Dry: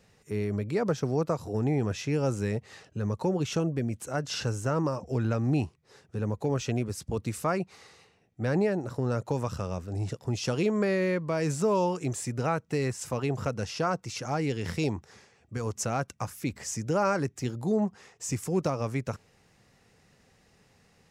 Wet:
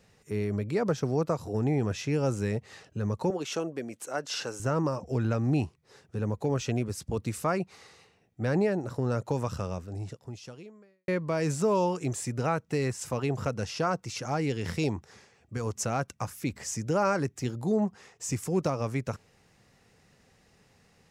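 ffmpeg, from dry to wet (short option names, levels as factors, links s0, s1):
-filter_complex "[0:a]asettb=1/sr,asplit=3[s0][s1][s2];[s0]atrim=end=3.304[s3];[s1]atrim=start=3.3:end=4.6,asetpts=PTS-STARTPTS,afade=t=in:d=0.004:c=qsin,afade=t=out:st=1.296:d=0.004:c=qsin,highpass=340[s4];[s2]atrim=start=4.596[s5];[s3][s4]acrossfade=d=0.004:c1=hsin:c2=qsin[s6];[s6][s5]acrossfade=d=0.004:c1=qsin:c2=hsin,asplit=2[s7][s8];[s7]atrim=end=11.08,asetpts=PTS-STARTPTS,afade=t=out:st=9.65:d=1.43:c=qua[s9];[s8]atrim=start=11.08,asetpts=PTS-STARTPTS,afade=t=in:d=0.004:c=hsin[s10];[s9][s10]concat=n=2:v=0:a=1"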